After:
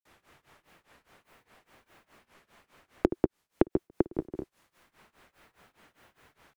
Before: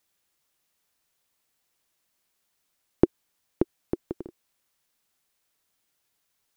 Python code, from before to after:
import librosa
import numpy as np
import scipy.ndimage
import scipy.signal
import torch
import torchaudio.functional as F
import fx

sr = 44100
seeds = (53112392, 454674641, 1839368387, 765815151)

y = fx.echo_multitap(x, sr, ms=(54, 172, 185), db=(-15.5, -4.0, -15.5))
y = fx.granulator(y, sr, seeds[0], grain_ms=237.0, per_s=4.9, spray_ms=100.0, spread_st=0)
y = fx.band_squash(y, sr, depth_pct=70)
y = y * 10.0 ** (4.0 / 20.0)